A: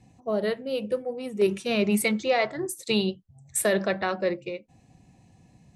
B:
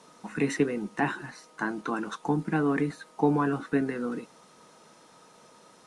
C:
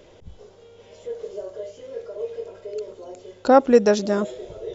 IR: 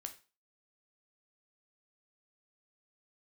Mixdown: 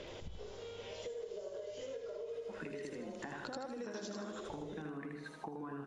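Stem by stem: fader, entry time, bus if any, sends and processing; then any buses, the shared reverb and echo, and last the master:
off
+0.5 dB, 2.25 s, bus A, no send, echo send -11 dB, compressor, threshold -26 dBFS, peak gain reduction 8 dB
+1.0 dB, 0.00 s, bus A, no send, echo send -9.5 dB, compressor, threshold -23 dBFS, peak gain reduction 14 dB; high shelf 2400 Hz +11 dB
bus A: 0.0 dB, LPF 3600 Hz 12 dB/oct; compressor, threshold -34 dBFS, peak gain reduction 14.5 dB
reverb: off
echo: feedback echo 78 ms, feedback 43%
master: compressor 4:1, threshold -43 dBFS, peak gain reduction 14 dB

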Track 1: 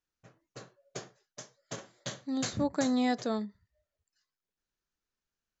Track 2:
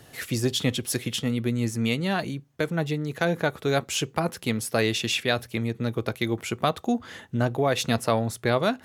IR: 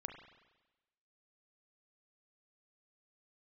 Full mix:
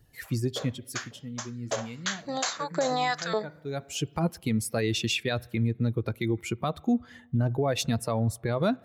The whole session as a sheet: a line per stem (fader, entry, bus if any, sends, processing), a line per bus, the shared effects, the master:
+2.5 dB, 0.00 s, no send, AGC gain up to 5.5 dB; LFO high-pass saw up 1.8 Hz 450–2000 Hz
+0.5 dB, 0.00 s, send -20.5 dB, per-bin expansion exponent 1.5; low shelf 330 Hz +8 dB; auto duck -21 dB, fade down 1.30 s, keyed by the first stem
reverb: on, RT60 1.1 s, pre-delay 33 ms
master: limiter -17 dBFS, peak gain reduction 10 dB

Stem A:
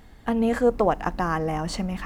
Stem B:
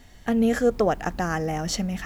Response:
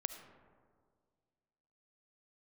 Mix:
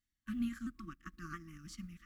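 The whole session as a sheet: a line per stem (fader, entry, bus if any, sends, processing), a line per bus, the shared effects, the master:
-11.5 dB, 0.00 s, send -19 dB, shaped vibrato saw down 3 Hz, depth 160 cents
-6.0 dB, 0.00 s, no send, limiter -21 dBFS, peak gain reduction 11.5 dB; HPF 990 Hz; high shelf 5500 Hz +8.5 dB; auto duck -9 dB, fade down 0.40 s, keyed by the first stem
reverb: on, RT60 1.9 s, pre-delay 30 ms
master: FFT band-reject 350–1100 Hz; upward expander 2.5:1, over -53 dBFS

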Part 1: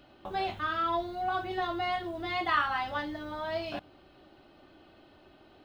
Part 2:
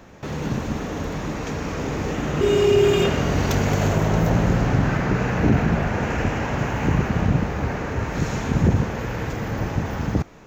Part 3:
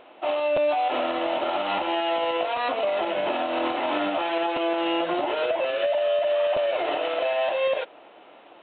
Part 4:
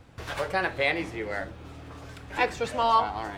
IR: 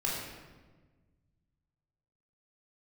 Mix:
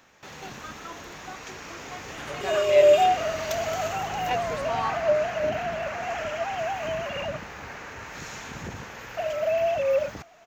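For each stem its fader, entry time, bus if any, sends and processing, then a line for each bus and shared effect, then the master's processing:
-9.5 dB, 0.00 s, no send, chopper 4.7 Hz, duty 35%
-13.0 dB, 0.00 s, no send, tilt shelf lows -9.5 dB, about 630 Hz
+2.0 dB, 2.25 s, muted 7.37–9.17, no send, sine-wave speech
-8.0 dB, 1.90 s, no send, dry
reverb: off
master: dry

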